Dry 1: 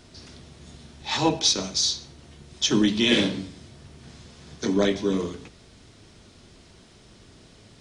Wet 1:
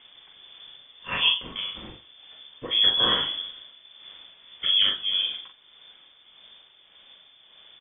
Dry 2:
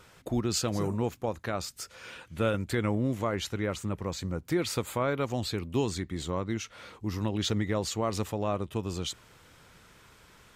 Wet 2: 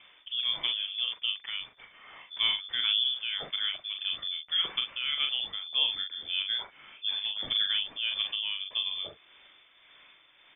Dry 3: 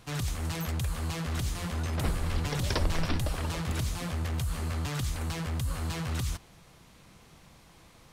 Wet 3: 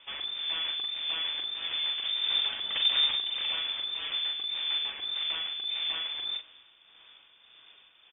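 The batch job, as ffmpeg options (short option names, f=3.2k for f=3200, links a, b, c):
-filter_complex "[0:a]lowpass=f=3.1k:t=q:w=0.5098,lowpass=f=3.1k:t=q:w=0.6013,lowpass=f=3.1k:t=q:w=0.9,lowpass=f=3.1k:t=q:w=2.563,afreqshift=-3600,tremolo=f=1.7:d=0.51,asplit=2[a][b];[b]adelay=41,volume=-5dB[c];[a][c]amix=inputs=2:normalize=0"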